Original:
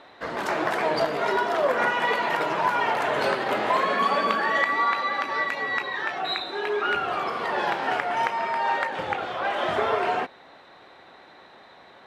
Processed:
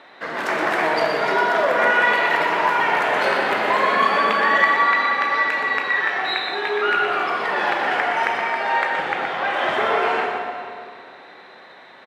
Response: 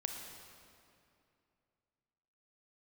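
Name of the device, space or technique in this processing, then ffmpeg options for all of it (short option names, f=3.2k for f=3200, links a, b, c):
PA in a hall: -filter_complex "[0:a]highpass=150,equalizer=f=2k:t=o:w=1.2:g=5.5,aecho=1:1:122:0.422[a];[1:a]atrim=start_sample=2205[b];[a][b]afir=irnorm=-1:irlink=0,volume=2dB"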